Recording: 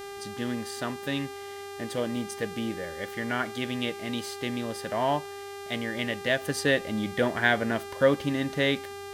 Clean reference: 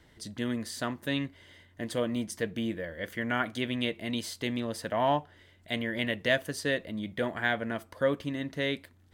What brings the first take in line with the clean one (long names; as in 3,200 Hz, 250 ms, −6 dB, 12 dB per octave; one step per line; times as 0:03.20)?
hum removal 399.5 Hz, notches 35
level 0 dB, from 0:06.43 −5.5 dB